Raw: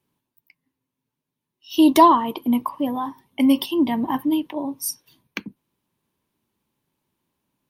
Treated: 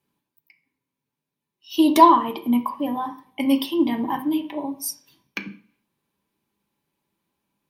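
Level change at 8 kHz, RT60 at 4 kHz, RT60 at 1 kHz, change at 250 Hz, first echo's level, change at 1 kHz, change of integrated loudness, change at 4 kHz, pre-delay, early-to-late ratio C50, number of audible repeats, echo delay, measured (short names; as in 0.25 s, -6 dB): -2.0 dB, 0.45 s, 0.50 s, -2.0 dB, none, +0.5 dB, -1.0 dB, -1.5 dB, 3 ms, 13.0 dB, none, none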